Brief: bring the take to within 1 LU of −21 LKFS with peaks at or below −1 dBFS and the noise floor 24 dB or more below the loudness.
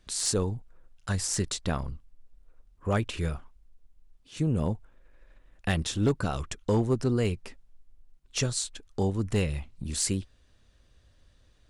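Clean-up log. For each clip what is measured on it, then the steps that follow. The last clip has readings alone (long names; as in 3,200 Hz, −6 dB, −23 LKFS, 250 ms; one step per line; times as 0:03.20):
share of clipped samples 0.2%; peaks flattened at −17.5 dBFS; integrated loudness −30.0 LKFS; sample peak −17.5 dBFS; target loudness −21.0 LKFS
→ clipped peaks rebuilt −17.5 dBFS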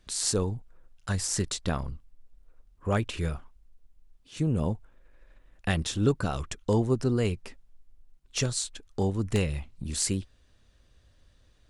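share of clipped samples 0.0%; integrated loudness −30.0 LKFS; sample peak −10.5 dBFS; target loudness −21.0 LKFS
→ level +9 dB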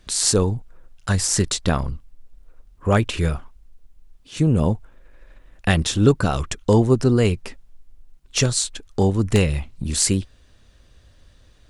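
integrated loudness −21.0 LKFS; sample peak −1.5 dBFS; background noise floor −53 dBFS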